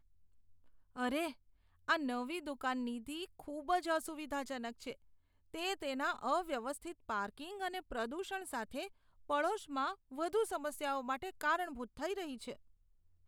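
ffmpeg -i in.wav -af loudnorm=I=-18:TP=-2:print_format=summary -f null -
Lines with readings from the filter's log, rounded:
Input Integrated:    -39.2 LUFS
Input True Peak:     -19.7 dBTP
Input LRA:             2.1 LU
Input Threshold:     -49.5 LUFS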